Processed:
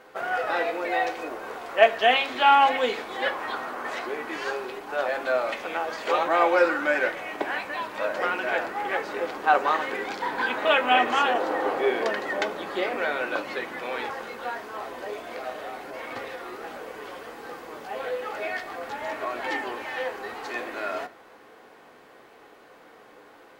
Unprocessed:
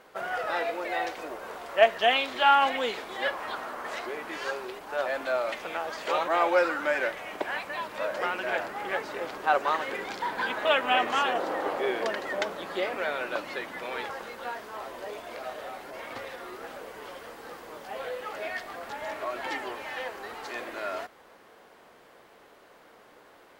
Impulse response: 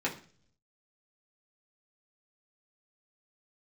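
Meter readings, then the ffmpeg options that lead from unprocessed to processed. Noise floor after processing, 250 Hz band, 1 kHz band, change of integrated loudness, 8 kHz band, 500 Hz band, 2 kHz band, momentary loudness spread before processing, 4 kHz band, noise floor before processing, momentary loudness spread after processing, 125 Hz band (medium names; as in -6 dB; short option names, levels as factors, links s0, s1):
-52 dBFS, +4.5 dB, +4.0 dB, +3.5 dB, +0.5 dB, +3.0 dB, +3.5 dB, 16 LU, +2.0 dB, -55 dBFS, 16 LU, +1.5 dB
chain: -filter_complex "[0:a]asplit=2[s0][s1];[1:a]atrim=start_sample=2205,lowpass=7500[s2];[s1][s2]afir=irnorm=-1:irlink=0,volume=0.335[s3];[s0][s3]amix=inputs=2:normalize=0"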